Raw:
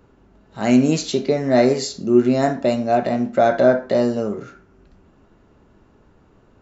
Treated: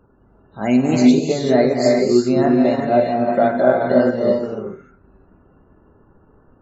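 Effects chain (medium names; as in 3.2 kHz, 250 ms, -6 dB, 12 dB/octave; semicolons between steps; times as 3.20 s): loudest bins only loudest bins 64; gated-style reverb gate 410 ms rising, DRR -1 dB; transient shaper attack +1 dB, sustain -3 dB; trim -1.5 dB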